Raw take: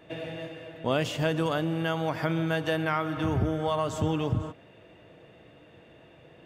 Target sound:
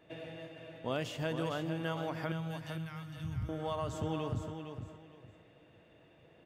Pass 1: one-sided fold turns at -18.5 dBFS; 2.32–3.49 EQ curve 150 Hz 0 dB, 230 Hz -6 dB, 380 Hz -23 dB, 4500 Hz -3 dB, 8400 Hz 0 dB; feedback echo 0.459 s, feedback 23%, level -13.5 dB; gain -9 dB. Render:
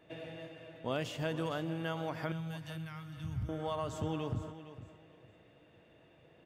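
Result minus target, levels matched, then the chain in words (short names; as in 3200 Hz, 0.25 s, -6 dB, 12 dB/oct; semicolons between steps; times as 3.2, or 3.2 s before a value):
echo-to-direct -6 dB
one-sided fold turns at -18.5 dBFS; 2.32–3.49 EQ curve 150 Hz 0 dB, 230 Hz -6 dB, 380 Hz -23 dB, 4500 Hz -3 dB, 8400 Hz 0 dB; feedback echo 0.459 s, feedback 23%, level -7.5 dB; gain -9 dB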